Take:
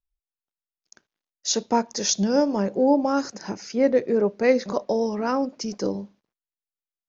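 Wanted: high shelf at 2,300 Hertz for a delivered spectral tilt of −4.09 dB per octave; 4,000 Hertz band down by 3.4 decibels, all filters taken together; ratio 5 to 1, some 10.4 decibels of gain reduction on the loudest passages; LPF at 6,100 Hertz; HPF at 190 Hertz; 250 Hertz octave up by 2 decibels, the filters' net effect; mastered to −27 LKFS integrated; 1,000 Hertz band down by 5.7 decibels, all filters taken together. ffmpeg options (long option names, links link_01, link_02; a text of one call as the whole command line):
ffmpeg -i in.wav -af "highpass=190,lowpass=6100,equalizer=frequency=250:width_type=o:gain=4,equalizer=frequency=1000:width_type=o:gain=-8,highshelf=frequency=2300:gain=4,equalizer=frequency=4000:width_type=o:gain=-7,acompressor=threshold=-26dB:ratio=5,volume=3.5dB" out.wav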